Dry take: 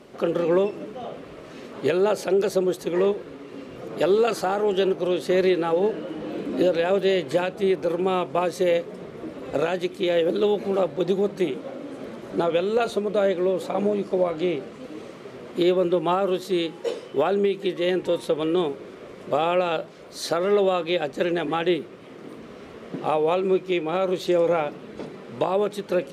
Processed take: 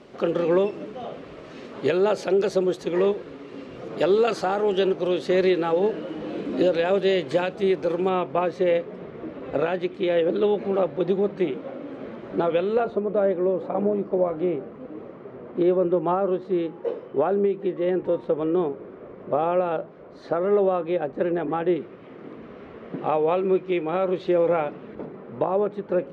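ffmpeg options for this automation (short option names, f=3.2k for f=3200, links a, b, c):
-af "asetnsamples=n=441:p=0,asendcmd='8.09 lowpass f 2700;12.8 lowpass f 1300;21.76 lowpass f 2300;24.95 lowpass f 1400',lowpass=5.9k"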